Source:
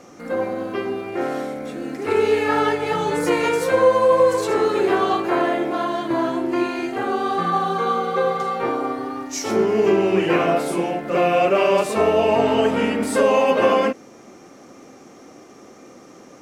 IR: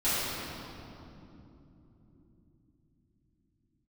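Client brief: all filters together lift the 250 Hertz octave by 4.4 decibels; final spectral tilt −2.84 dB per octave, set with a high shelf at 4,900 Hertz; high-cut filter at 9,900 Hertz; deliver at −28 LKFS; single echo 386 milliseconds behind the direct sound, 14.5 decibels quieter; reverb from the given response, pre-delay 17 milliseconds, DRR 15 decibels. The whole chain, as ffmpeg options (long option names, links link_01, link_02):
-filter_complex "[0:a]lowpass=9900,equalizer=frequency=250:width_type=o:gain=6,highshelf=frequency=4900:gain=-6,aecho=1:1:386:0.188,asplit=2[link_01][link_02];[1:a]atrim=start_sample=2205,adelay=17[link_03];[link_02][link_03]afir=irnorm=-1:irlink=0,volume=-27.5dB[link_04];[link_01][link_04]amix=inputs=2:normalize=0,volume=-10dB"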